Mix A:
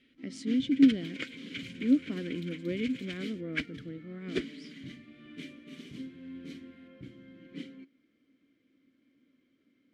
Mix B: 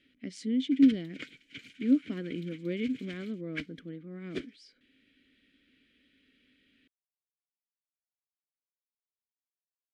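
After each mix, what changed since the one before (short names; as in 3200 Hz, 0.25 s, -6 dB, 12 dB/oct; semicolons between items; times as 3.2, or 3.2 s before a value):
first sound: muted; second sound -5.0 dB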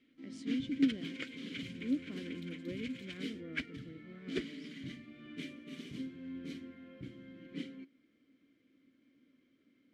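speech -9.5 dB; first sound: unmuted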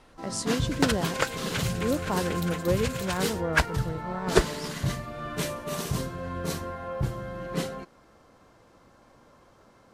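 master: remove vowel filter i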